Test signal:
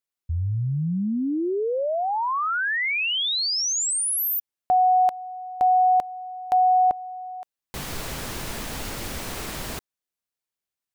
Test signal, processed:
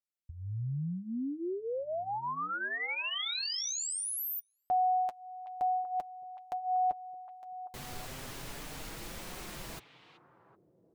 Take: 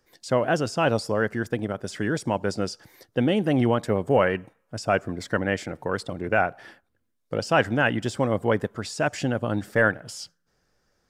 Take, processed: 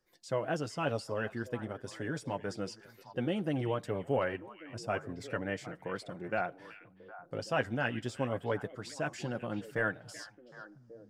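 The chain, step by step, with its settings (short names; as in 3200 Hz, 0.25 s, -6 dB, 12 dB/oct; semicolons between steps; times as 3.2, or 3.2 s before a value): flange 0.32 Hz, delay 5.4 ms, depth 2.9 ms, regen -30%; on a send: delay with a stepping band-pass 0.38 s, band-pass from 2700 Hz, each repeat -1.4 oct, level -9 dB; on the sum: gain -7.5 dB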